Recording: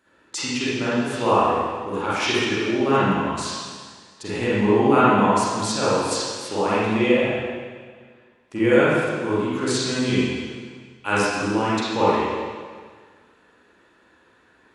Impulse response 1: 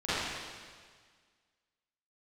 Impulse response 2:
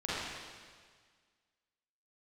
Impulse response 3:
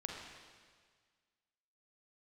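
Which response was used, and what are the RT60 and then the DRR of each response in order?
2; 1.7, 1.7, 1.7 s; -16.0, -10.0, -0.5 dB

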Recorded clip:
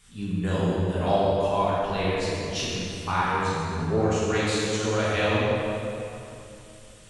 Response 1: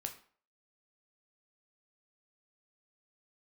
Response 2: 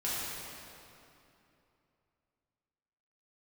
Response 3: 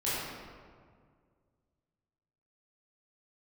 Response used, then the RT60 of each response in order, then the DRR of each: 2; 0.45, 2.8, 1.9 s; 4.0, -10.0, -11.0 dB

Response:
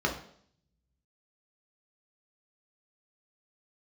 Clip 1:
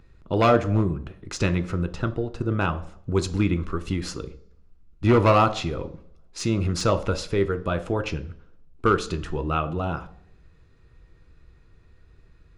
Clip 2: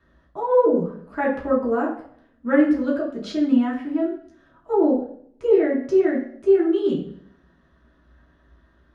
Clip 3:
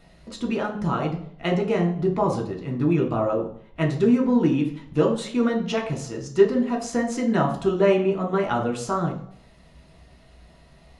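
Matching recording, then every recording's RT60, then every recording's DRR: 3; 0.60, 0.60, 0.60 s; 8.5, -5.5, -1.0 dB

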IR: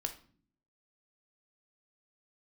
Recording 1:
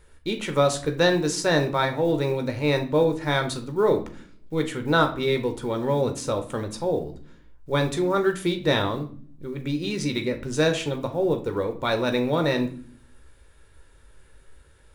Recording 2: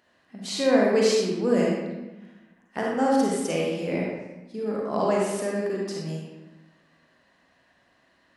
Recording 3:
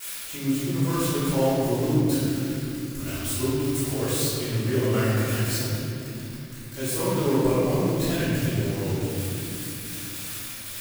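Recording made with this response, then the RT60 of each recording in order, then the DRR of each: 1; 0.50, 1.1, 2.9 s; 5.5, -3.5, -16.5 dB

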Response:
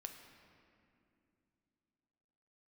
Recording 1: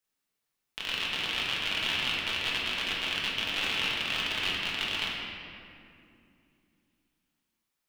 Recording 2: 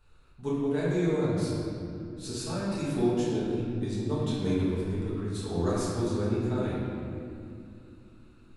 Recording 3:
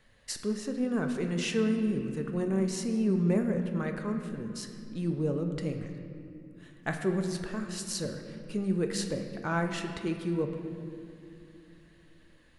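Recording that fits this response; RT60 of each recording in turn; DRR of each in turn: 3; 2.6, 2.6, 2.7 s; -5.5, -10.5, 4.5 dB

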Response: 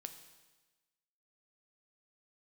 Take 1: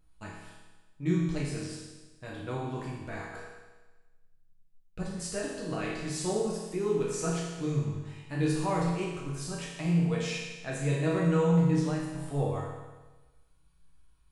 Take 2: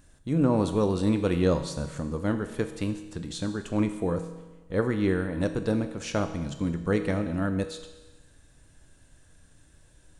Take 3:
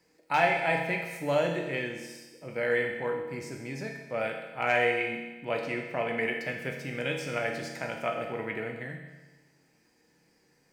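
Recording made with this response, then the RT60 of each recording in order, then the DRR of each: 2; 1.2, 1.2, 1.2 s; -5.5, 7.5, 1.0 dB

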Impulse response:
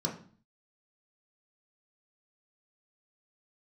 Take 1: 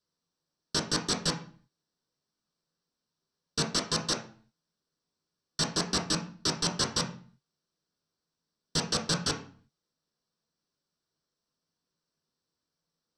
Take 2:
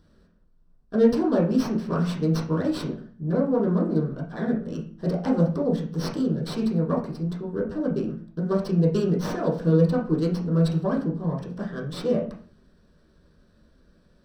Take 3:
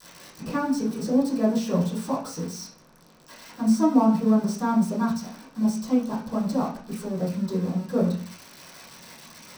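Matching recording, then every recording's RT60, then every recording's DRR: 1; 0.45, 0.45, 0.45 s; -1.5, -5.5, -14.5 dB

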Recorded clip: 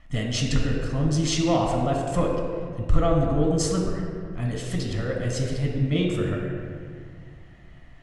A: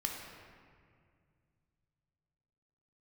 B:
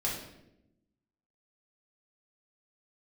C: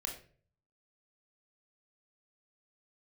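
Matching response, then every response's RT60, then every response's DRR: A; 2.1, 0.85, 0.45 s; 0.0, -5.0, 1.0 dB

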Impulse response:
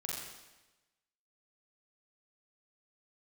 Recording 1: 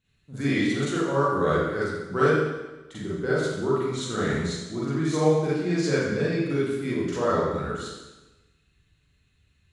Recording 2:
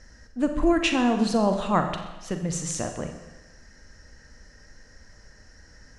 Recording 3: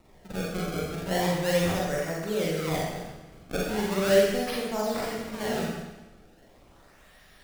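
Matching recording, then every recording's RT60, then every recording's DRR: 3; 1.1, 1.1, 1.1 s; -9.5, 5.5, -4.5 dB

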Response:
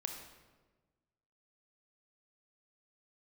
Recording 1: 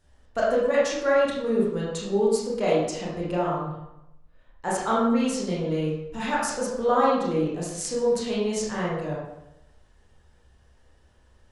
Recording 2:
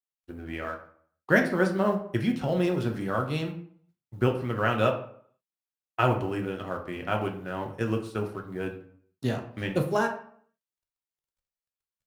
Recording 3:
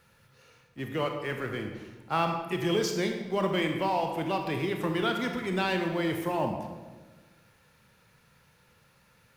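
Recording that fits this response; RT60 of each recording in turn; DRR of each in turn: 3; 0.90, 0.60, 1.3 s; -7.0, 2.5, 3.5 dB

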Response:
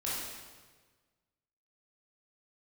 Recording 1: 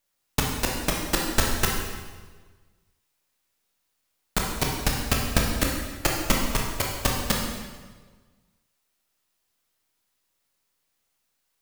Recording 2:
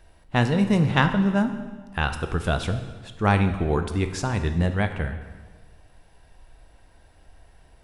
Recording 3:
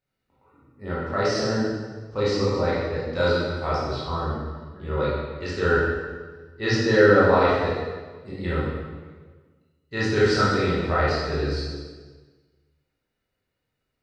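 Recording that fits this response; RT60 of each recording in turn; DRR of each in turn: 3; 1.4, 1.4, 1.4 s; -1.5, 7.5, -8.5 dB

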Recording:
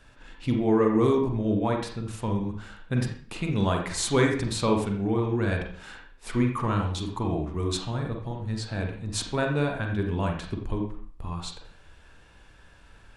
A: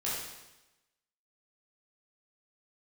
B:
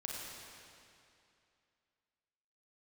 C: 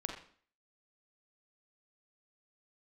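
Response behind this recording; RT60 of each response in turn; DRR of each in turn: C; 1.0, 2.6, 0.50 s; -8.0, -3.5, 2.0 dB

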